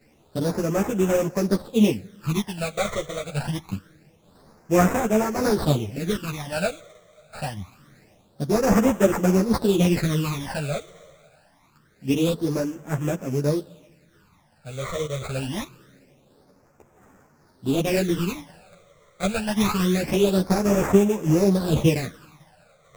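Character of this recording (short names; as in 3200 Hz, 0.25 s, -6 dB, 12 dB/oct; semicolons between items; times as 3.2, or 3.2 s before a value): aliases and images of a low sample rate 3100 Hz, jitter 20%; phasing stages 12, 0.25 Hz, lowest notch 270–4200 Hz; tremolo saw down 0.92 Hz, depth 35%; a shimmering, thickened sound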